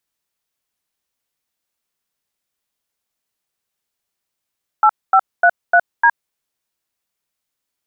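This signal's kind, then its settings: DTMF "8533D", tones 64 ms, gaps 237 ms, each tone -10 dBFS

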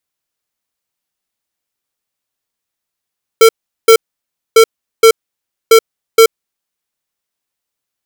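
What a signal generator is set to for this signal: beep pattern square 451 Hz, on 0.08 s, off 0.39 s, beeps 2, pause 0.60 s, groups 3, -4 dBFS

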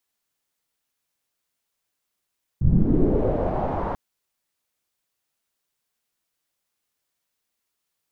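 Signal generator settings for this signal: swept filtered noise pink, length 1.34 s lowpass, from 100 Hz, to 950 Hz, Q 2.8, linear, gain ramp -12 dB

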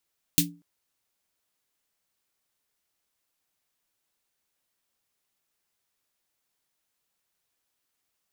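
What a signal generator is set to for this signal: snare drum length 0.24 s, tones 170 Hz, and 290 Hz, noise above 2.5 kHz, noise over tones 7 dB, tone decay 0.34 s, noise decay 0.13 s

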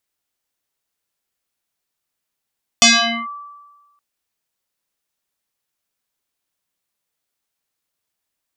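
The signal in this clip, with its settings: FM tone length 1.17 s, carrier 1.16 kHz, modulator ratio 0.8, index 6.5, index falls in 0.45 s linear, decay 1.30 s, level -5 dB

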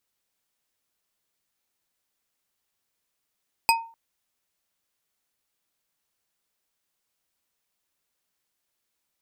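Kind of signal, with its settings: glass hit bar, length 0.25 s, lowest mode 914 Hz, decay 0.39 s, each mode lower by 2 dB, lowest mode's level -15 dB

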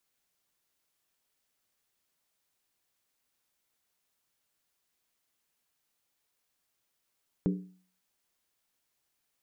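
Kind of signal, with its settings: skin hit, lowest mode 184 Hz, decay 0.47 s, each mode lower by 5 dB, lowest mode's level -22.5 dB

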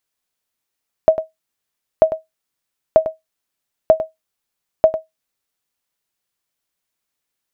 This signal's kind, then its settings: sonar ping 638 Hz, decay 0.16 s, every 0.94 s, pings 5, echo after 0.10 s, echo -12 dB -1 dBFS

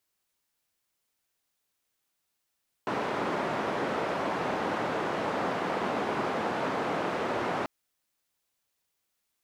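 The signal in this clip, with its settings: noise band 190–950 Hz, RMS -30.5 dBFS 4.79 s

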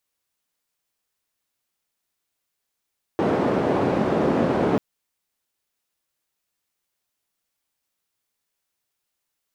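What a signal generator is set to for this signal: noise band 180–470 Hz, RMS -21 dBFS 1.59 s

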